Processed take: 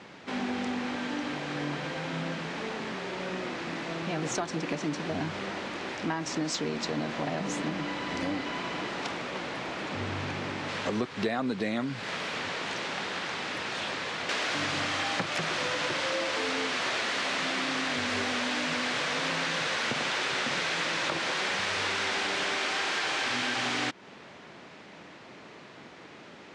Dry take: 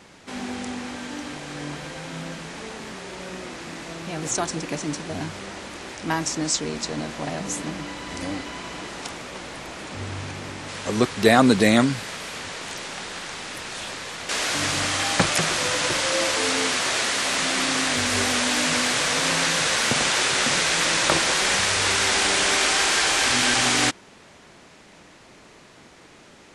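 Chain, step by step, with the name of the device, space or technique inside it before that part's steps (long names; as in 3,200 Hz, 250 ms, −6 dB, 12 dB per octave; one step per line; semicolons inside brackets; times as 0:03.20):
AM radio (band-pass filter 120–4,000 Hz; downward compressor 8 to 1, threshold −28 dBFS, peak gain reduction 16.5 dB; soft clipping −18 dBFS, distortion −29 dB)
level +1.5 dB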